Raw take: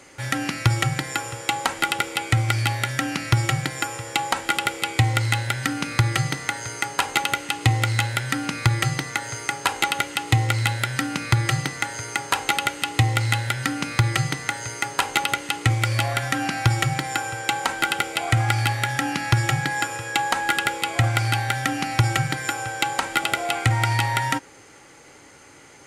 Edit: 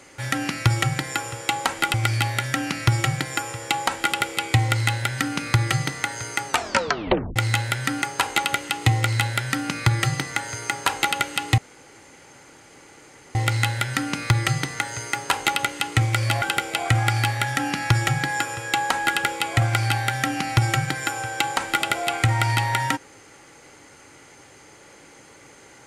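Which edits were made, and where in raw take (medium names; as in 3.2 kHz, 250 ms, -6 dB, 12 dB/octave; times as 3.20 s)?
1.94–2.39 s: delete
6.93 s: tape stop 0.88 s
8.47–9.48 s: delete
13.04 s: insert room tone 1.77 s
16.11–17.84 s: delete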